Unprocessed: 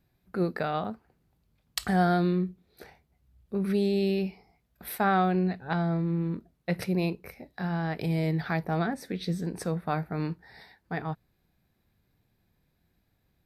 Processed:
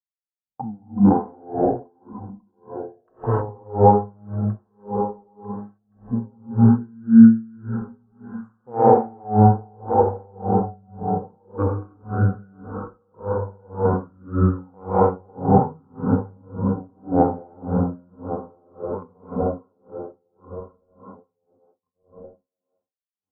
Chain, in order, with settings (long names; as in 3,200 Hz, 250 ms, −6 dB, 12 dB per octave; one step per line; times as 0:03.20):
feedback delay that plays each chunk backwards 410 ms, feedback 71%, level −9.5 dB
noise reduction from a noise print of the clip's start 12 dB
noise gate −54 dBFS, range −39 dB
elliptic low-pass filter 2,500 Hz, stop band 40 dB
harmonic generator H 2 −20 dB, 3 −34 dB, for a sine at −13.5 dBFS
hollow resonant body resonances 380/880/1,300 Hz, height 15 dB, ringing for 20 ms
on a send: feedback echo with a high-pass in the loop 120 ms, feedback 22%, high-pass 880 Hz, level −14 dB
on the sum: reverb whose tail is shaped and stops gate 200 ms rising, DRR −6 dB
wrong playback speed 78 rpm record played at 45 rpm
boost into a limiter +3 dB
tremolo with a sine in dB 1.8 Hz, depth 36 dB